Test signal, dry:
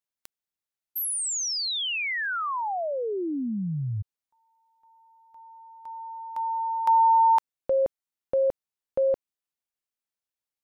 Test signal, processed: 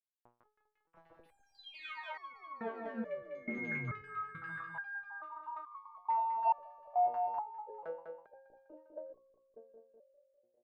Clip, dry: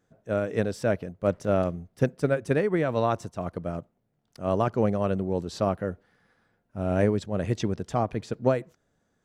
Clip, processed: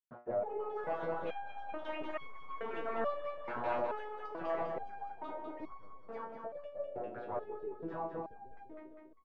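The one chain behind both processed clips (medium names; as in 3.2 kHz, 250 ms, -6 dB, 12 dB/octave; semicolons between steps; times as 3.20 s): hum notches 60/120/180/240/300/360/420/480 Hz; gate with hold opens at -56 dBFS, range -19 dB; harmonic-percussive split harmonic -15 dB; peaking EQ 3.5 kHz +3.5 dB 1.5 oct; compression 16:1, threshold -39 dBFS; square tremolo 1.1 Hz, depth 60%, duty 50%; overdrive pedal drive 30 dB, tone 1.2 kHz, clips at -27 dBFS; crossover distortion -54 dBFS; LFO low-pass saw down 1.4 Hz 300–1600 Hz; ever faster or slower copies 216 ms, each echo +5 st, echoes 3; feedback delay 200 ms, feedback 57%, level -5.5 dB; resonator arpeggio 2.3 Hz 120–1100 Hz; trim +7.5 dB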